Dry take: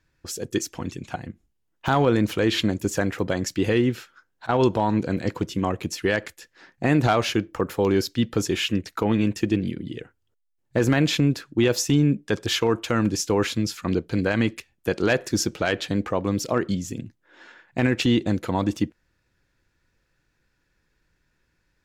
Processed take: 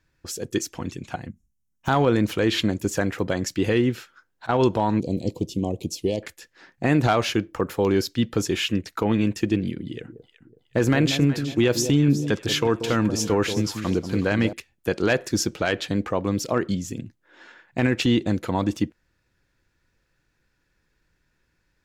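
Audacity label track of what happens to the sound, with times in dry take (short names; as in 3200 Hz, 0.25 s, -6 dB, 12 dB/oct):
1.290000	1.870000	spectral gain 260–5300 Hz -15 dB
5.000000	6.230000	Butterworth band-stop 1500 Hz, Q 0.53
9.850000	14.530000	echo with dull and thin repeats by turns 0.185 s, split 820 Hz, feedback 57%, level -8.5 dB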